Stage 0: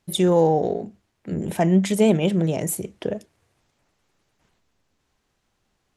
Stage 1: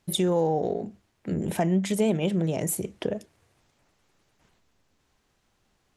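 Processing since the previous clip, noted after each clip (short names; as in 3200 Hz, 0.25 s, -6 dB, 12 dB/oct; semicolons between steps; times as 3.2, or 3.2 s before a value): compressor 2:1, threshold -28 dBFS, peak gain reduction 8.5 dB; gain +1.5 dB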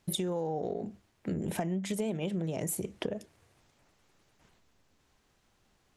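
compressor 6:1, threshold -30 dBFS, peak gain reduction 10.5 dB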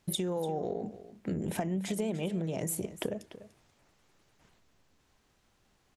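echo 0.293 s -15 dB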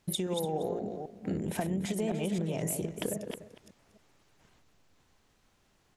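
reverse delay 0.265 s, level -5.5 dB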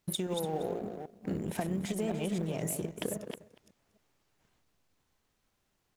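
G.711 law mismatch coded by A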